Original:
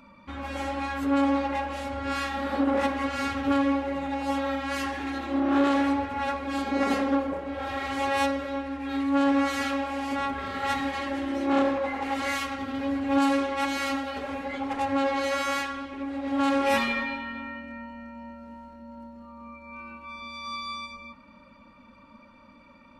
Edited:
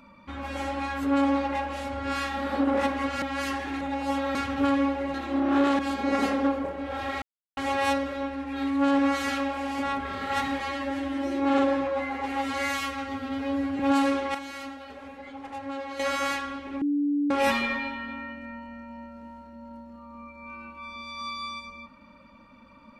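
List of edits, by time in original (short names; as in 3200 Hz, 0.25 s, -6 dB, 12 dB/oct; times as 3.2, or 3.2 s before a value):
3.22–4.01 swap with 4.55–5.14
5.79–6.47 cut
7.9 insert silence 0.35 s
10.93–13.06 stretch 1.5×
13.61–15.26 gain -9.5 dB
16.08–16.57 bleep 289 Hz -22 dBFS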